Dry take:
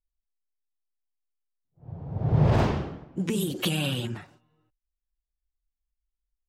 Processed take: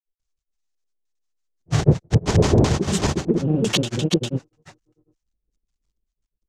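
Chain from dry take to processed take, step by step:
one scale factor per block 3 bits
auto-filter low-pass square 1.5 Hz 430–6,600 Hz
granular cloud, grains 20 per second, spray 534 ms, pitch spread up and down by 0 semitones
level +7.5 dB

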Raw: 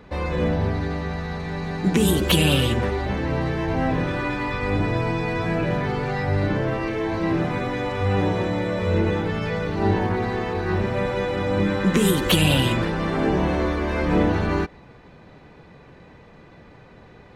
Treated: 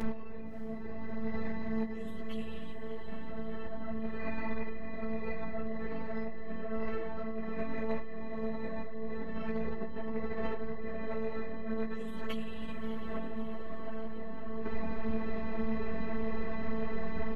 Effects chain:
low-pass filter 1,200 Hz 6 dB per octave
low-shelf EQ 96 Hz +10 dB
brickwall limiter −16.5 dBFS, peak gain reduction 11 dB
compressor whose output falls as the input rises −32 dBFS, ratio −0.5
phases set to zero 222 Hz
double-tracking delay 12 ms −9 dB
on a send: feedback delay with all-pass diffusion 632 ms, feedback 62%, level −10.5 dB
on the sum: string-ensemble chorus
level +4 dB

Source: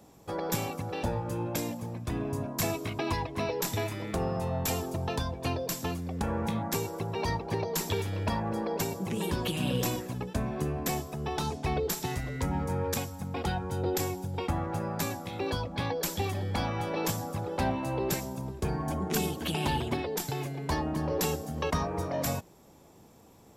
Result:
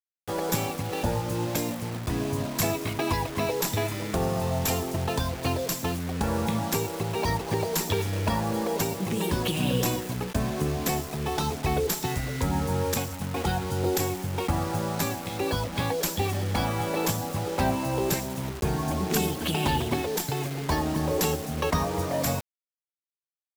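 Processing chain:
bit reduction 7 bits
level +4 dB

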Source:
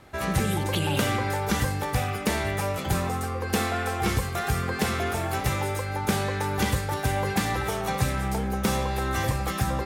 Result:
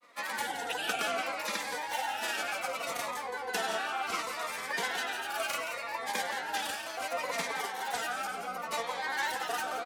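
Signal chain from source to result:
high-pass filter 780 Hz 12 dB per octave
high-shelf EQ 5,300 Hz −8 dB
comb filter 3.8 ms, depth 66%
granular cloud, grains 20 per second, pitch spread up and down by 3 semitones
on a send: single-tap delay 171 ms −10 dB
on the sum: phaser whose notches keep moving one way falling 0.69 Hz

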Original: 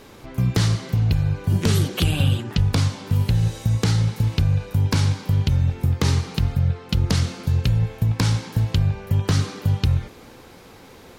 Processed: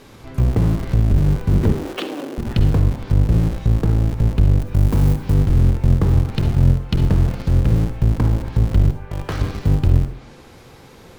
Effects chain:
sub-octave generator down 1 octave, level 0 dB
0:08.90–0:09.41: three-way crossover with the lows and the highs turned down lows −16 dB, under 450 Hz, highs −14 dB, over 2,700 Hz
treble cut that deepens with the level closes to 750 Hz, closed at −13 dBFS
in parallel at −11 dB: comparator with hysteresis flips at −27 dBFS
0:01.72–0:02.38: on the sum: Chebyshev high-pass filter 280 Hz, order 4
0:04.60–0:05.34: high-shelf EQ 7,800 Hz +10.5 dB
on a send at −9 dB: convolution reverb RT60 0.50 s, pre-delay 47 ms

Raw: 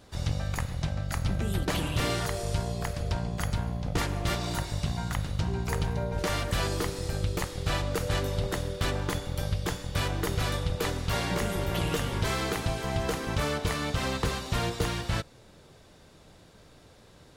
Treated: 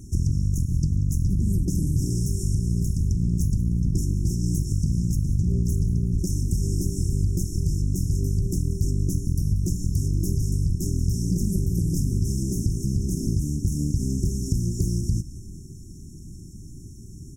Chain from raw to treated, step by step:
in parallel at −9 dB: sine wavefolder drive 5 dB, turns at −18 dBFS
on the sum: parametric band 14,000 Hz −3 dB 1.1 octaves
comb filter 1.3 ms, depth 52%
downward compressor 10 to 1, threshold −27 dBFS, peak gain reduction 10.5 dB
brick-wall band-stop 400–5,400 Hz
dynamic equaliser 190 Hz, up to +3 dB, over −44 dBFS, Q 2.3
on a send: echo with shifted repeats 185 ms, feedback 50%, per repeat −38 Hz, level −16 dB
on the sum: highs frequency-modulated by the lows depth 0.27 ms
level +8 dB

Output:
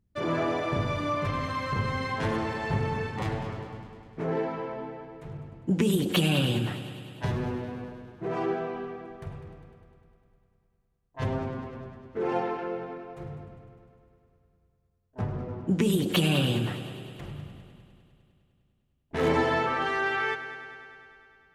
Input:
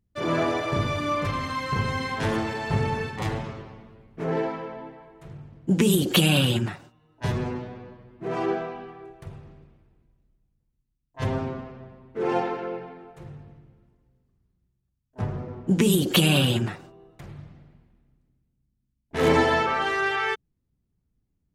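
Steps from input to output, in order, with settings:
high-shelf EQ 3,800 Hz −6.5 dB
in parallel at +2.5 dB: downward compressor, threshold −33 dBFS, peak gain reduction 16.5 dB
on the sum: echo machine with several playback heads 101 ms, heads first and second, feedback 67%, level −16 dB
level −6 dB

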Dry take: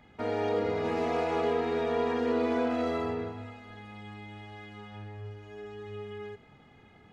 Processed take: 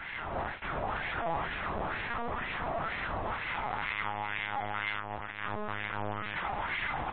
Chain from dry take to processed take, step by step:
sign of each sample alone
automatic gain control gain up to 15.5 dB
brickwall limiter −25 dBFS, peak gain reduction 36.5 dB
auto-filter band-pass sine 2.1 Hz 780–2,100 Hz
linear-prediction vocoder at 8 kHz pitch kept
MP3 24 kbit/s 24,000 Hz

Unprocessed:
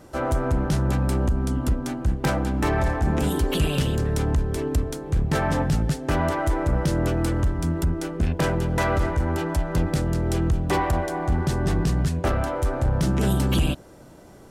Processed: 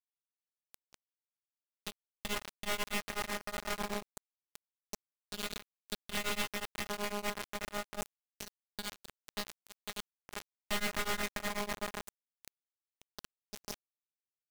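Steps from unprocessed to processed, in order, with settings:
parametric band 230 Hz −8.5 dB 2 octaves
reversed playback
downward compressor 10 to 1, threshold −30 dBFS, peak gain reduction 12 dB
reversed playback
soft clipping −30.5 dBFS, distortion −16 dB
auto-filter band-pass saw down 0.25 Hz 920–3,800 Hz
reverb reduction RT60 0.7 s
slap from a distant wall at 19 metres, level −13 dB
channel vocoder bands 16, square 103 Hz
full-wave rectification
in parallel at −0.5 dB: brickwall limiter −43.5 dBFS, peak gain reduction 8 dB
on the sum: bit reduction 7 bits
tremolo along a rectified sine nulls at 8.1 Hz
level +10.5 dB

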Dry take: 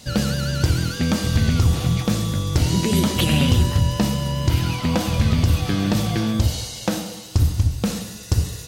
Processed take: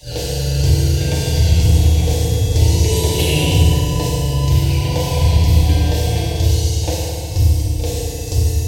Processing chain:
phaser with its sweep stopped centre 540 Hz, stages 4
backwards echo 41 ms −9.5 dB
feedback delay network reverb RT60 2.5 s, low-frequency decay 1.55×, high-frequency decay 0.65×, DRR −5.5 dB
level −1 dB

